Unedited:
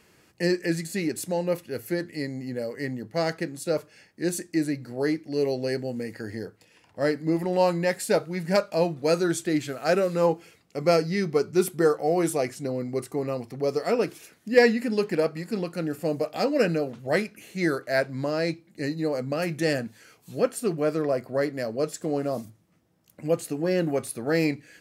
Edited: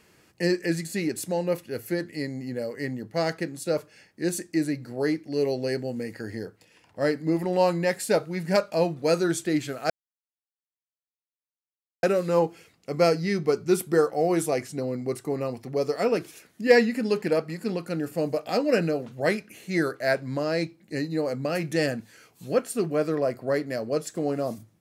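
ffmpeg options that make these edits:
-filter_complex "[0:a]asplit=2[s0][s1];[s0]atrim=end=9.9,asetpts=PTS-STARTPTS,afade=t=out:st=9.896:d=0.004:c=hsin,apad=pad_dur=2.13[s2];[s1]atrim=start=9.9,asetpts=PTS-STARTPTS,afade=t=in:d=0.004:c=hsin[s3];[s2][s3]concat=n=2:v=0:a=1"

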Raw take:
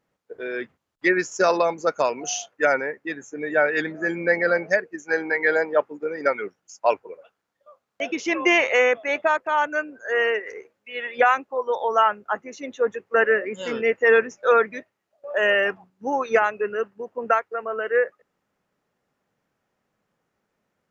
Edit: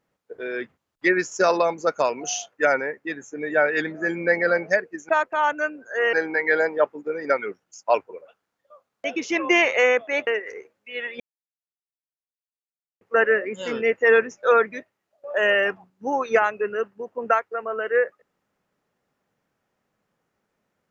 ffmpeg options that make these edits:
-filter_complex "[0:a]asplit=6[s0][s1][s2][s3][s4][s5];[s0]atrim=end=5.092[s6];[s1]atrim=start=9.228:end=10.272[s7];[s2]atrim=start=5.088:end=9.232[s8];[s3]atrim=start=10.268:end=11.2,asetpts=PTS-STARTPTS,afade=t=out:st=0.928:d=0.004:c=hsin[s9];[s4]atrim=start=11.2:end=13.01,asetpts=PTS-STARTPTS,volume=0[s10];[s5]atrim=start=13.01,asetpts=PTS-STARTPTS,afade=t=in:d=0.004:c=hsin[s11];[s6][s7]acrossfade=d=0.004:c1=hsin:c2=hsin[s12];[s12][s8]acrossfade=d=0.004:c1=hsin:c2=hsin[s13];[s9][s10][s11]concat=n=3:v=0:a=1[s14];[s13][s14]acrossfade=d=0.004:c1=hsin:c2=hsin"

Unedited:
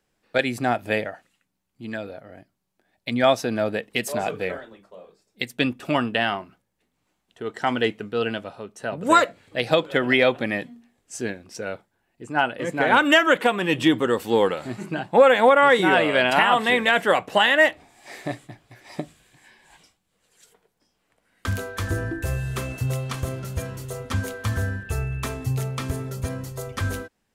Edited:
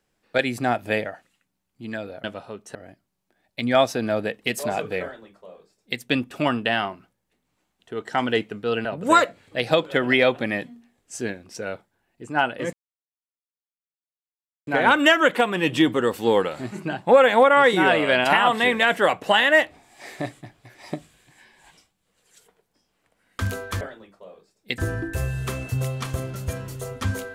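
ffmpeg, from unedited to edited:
-filter_complex "[0:a]asplit=7[s0][s1][s2][s3][s4][s5][s6];[s0]atrim=end=2.242[s7];[s1]atrim=start=8.338:end=8.852[s8];[s2]atrim=start=2.238:end=8.342[s9];[s3]atrim=start=8.848:end=12.73,asetpts=PTS-STARTPTS,afade=t=out:st=3.878:d=0.004:c=hsin,apad=pad_dur=1.94[s10];[s4]atrim=start=12.73:end=21.872,asetpts=PTS-STARTPTS,afade=t=in:d=0.004:c=hsin[s11];[s5]atrim=start=4.518:end=5.492[s12];[s6]atrim=start=21.868[s13];[s7][s8]acrossfade=d=0.004:c1=hsin:c2=hsin[s14];[s14][s9]acrossfade=d=0.004:c1=hsin:c2=hsin[s15];[s10][s11]concat=n=2:v=0:a=1[s16];[s15][s16]acrossfade=d=0.004:c1=hsin:c2=hsin[s17];[s17][s12]acrossfade=d=0.004:c1=hsin:c2=hsin[s18];[s18][s13]acrossfade=d=0.004:c1=hsin:c2=hsin"

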